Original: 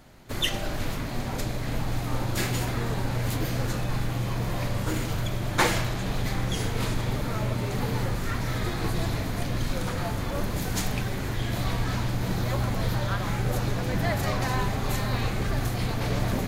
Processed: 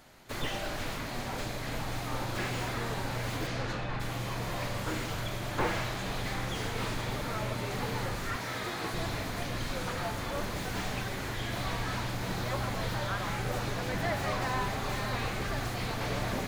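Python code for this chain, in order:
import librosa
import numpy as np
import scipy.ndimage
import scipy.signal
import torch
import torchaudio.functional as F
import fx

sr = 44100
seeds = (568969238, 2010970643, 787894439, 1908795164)

y = fx.tracing_dist(x, sr, depth_ms=0.17)
y = fx.highpass(y, sr, hz=190.0, slope=6, at=(8.36, 8.94))
y = fx.low_shelf(y, sr, hz=380.0, db=-9.5)
y = fx.lowpass(y, sr, hz=fx.line((3.46, 6700.0), (3.99, 2800.0)), slope=12, at=(3.46, 3.99), fade=0.02)
y = fx.slew_limit(y, sr, full_power_hz=49.0)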